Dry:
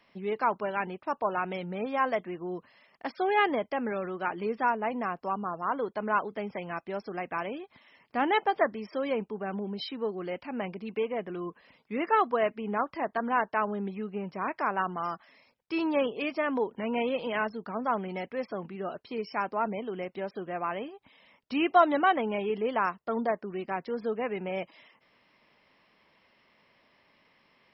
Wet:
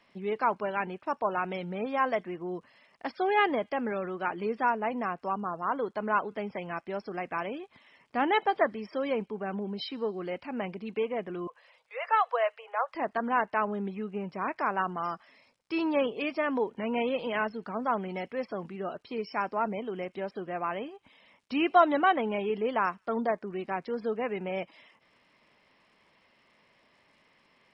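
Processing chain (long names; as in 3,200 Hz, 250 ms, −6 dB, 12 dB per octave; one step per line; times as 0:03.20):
0:11.47–0:12.95: Butterworth high-pass 480 Hz 96 dB per octave
surface crackle 150 per second −61 dBFS
on a send: delay with a high-pass on its return 81 ms, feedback 59%, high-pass 3,700 Hz, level −23 dB
on the sum: AAC 64 kbit/s 22,050 Hz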